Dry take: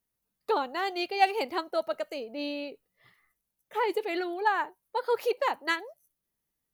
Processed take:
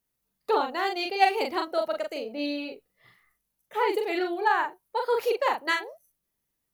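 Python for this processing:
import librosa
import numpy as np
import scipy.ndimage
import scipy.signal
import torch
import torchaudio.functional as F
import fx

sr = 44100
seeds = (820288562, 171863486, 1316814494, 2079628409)

y = fx.doubler(x, sr, ms=41.0, db=-4.0)
y = y * librosa.db_to_amplitude(1.5)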